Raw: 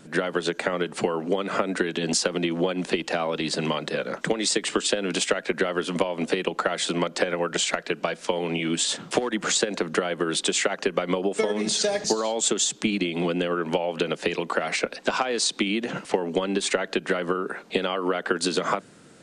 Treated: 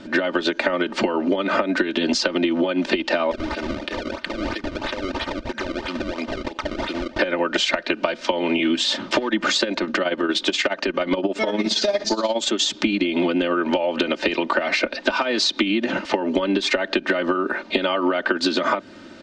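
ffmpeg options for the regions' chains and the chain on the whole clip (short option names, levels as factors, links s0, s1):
-filter_complex "[0:a]asettb=1/sr,asplit=3[s0][s1][s2];[s0]atrim=end=3.314[s3];[s1]atrim=start=3.31:end=7.19,asetpts=PTS-STARTPTS,afade=t=in:d=0.004:c=qsin,afade=t=out:st=3.876:d=0.004:c=qsin,lowshelf=f=340:g=-11.5,acrusher=samples=29:mix=1:aa=0.000001:lfo=1:lforange=46.4:lforate=3,acompressor=threshold=0.0224:ratio=6:attack=3.2:release=140:knee=1:detection=peak[s4];[s2]atrim=start=7.186[s5];[s3][s4]acrossfade=d=0.004:c1=hsin:c2=qsin[s6];[s6][s5]acrossfade=d=0.004:c1=qsin:c2=hsin,asettb=1/sr,asplit=3[s7][s8][s9];[s7]atrim=end=9.724[s10];[s8]atrim=start=9.72:end=12.6,asetpts=PTS-STARTPTS,afade=t=in:d=0.004:c=qsin,afade=t=out:st=2.876:d=0.004:c=qsin,tremolo=f=17:d=0.68,asoftclip=type=hard:threshold=0.141[s11];[s9]atrim=start=12.596[s12];[s10][s11]acrossfade=d=0.004:c1=hsin:c2=qsin[s13];[s13][s12]acrossfade=d=0.004:c1=qsin:c2=hsin,lowpass=f=5100:w=0.5412,lowpass=f=5100:w=1.3066,aecho=1:1:3.3:0.82,acompressor=threshold=0.0562:ratio=6,volume=2.51"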